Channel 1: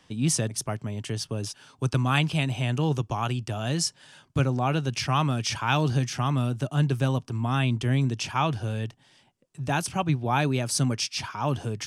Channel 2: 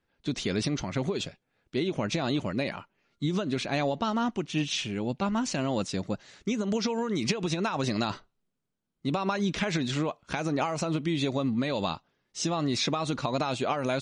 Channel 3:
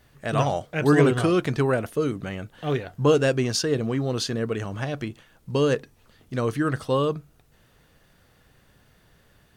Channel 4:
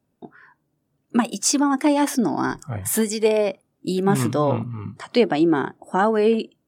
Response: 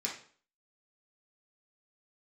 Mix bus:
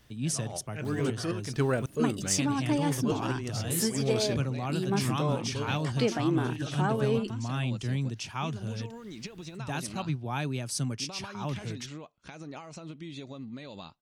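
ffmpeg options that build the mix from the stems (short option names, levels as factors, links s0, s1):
-filter_complex "[0:a]volume=0.501,asplit=3[s0][s1][s2];[s0]atrim=end=1.86,asetpts=PTS-STARTPTS,afade=t=out:st=1.856:d=0.004:c=hsin[s3];[s1]atrim=start=1.86:end=2.38,asetpts=PTS-STARTPTS,volume=0[s4];[s2]atrim=start=2.38,asetpts=PTS-STARTPTS,afade=t=in:d=0.004:c=hsin[s5];[s3][s4][s5]concat=n=3:v=0:a=1,asplit=2[s6][s7];[1:a]adelay=1950,volume=0.251[s8];[2:a]volume=0.75[s9];[3:a]acompressor=mode=upward:threshold=0.0794:ratio=2.5,adelay=850,volume=0.398[s10];[s7]apad=whole_len=421745[s11];[s9][s11]sidechaincompress=threshold=0.00501:ratio=8:attack=16:release=121[s12];[s6][s8][s12][s10]amix=inputs=4:normalize=0,equalizer=f=780:w=0.48:g=-4"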